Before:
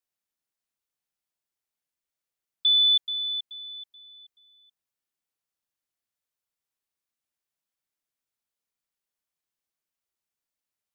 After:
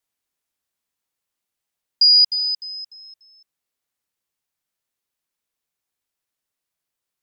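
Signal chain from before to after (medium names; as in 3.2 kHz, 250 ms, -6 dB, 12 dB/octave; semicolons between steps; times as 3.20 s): gliding tape speed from 124% -> 179%; trim +7.5 dB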